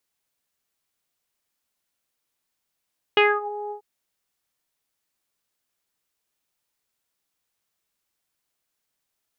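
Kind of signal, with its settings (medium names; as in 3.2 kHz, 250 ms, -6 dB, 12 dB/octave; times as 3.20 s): synth note saw G#4 24 dB/octave, low-pass 760 Hz, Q 4.4, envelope 2 oct, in 0.32 s, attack 1.6 ms, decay 0.23 s, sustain -18 dB, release 0.10 s, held 0.54 s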